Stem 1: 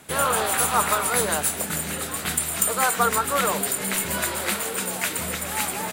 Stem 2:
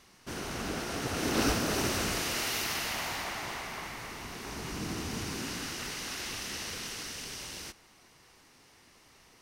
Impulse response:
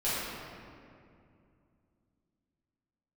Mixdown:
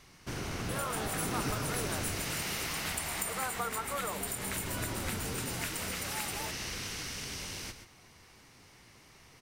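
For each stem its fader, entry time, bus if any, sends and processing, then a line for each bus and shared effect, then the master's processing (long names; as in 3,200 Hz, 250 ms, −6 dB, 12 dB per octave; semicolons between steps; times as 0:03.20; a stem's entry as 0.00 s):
−7.0 dB, 0.60 s, no send, no echo send, no processing
+0.5 dB, 0.00 s, no send, echo send −11 dB, sub-octave generator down 1 octave, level +3 dB; parametric band 2,200 Hz +3.5 dB 0.2 octaves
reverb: not used
echo: single-tap delay 129 ms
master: downward compressor 2.5 to 1, threshold −35 dBFS, peak gain reduction 10.5 dB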